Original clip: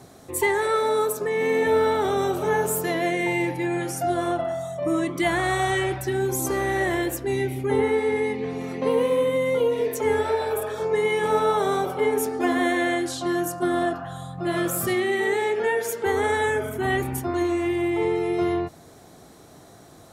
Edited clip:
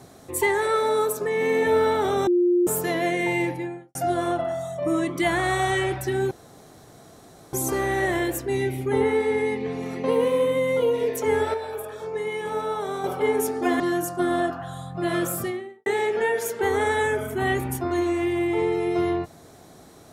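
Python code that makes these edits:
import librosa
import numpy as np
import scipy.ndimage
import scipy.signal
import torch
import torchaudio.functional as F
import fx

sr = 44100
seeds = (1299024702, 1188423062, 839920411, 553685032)

y = fx.studio_fade_out(x, sr, start_s=3.41, length_s=0.54)
y = fx.studio_fade_out(y, sr, start_s=14.64, length_s=0.65)
y = fx.edit(y, sr, fx.bleep(start_s=2.27, length_s=0.4, hz=353.0, db=-16.0),
    fx.insert_room_tone(at_s=6.31, length_s=1.22),
    fx.clip_gain(start_s=10.32, length_s=1.5, db=-6.5),
    fx.cut(start_s=12.58, length_s=0.65), tone=tone)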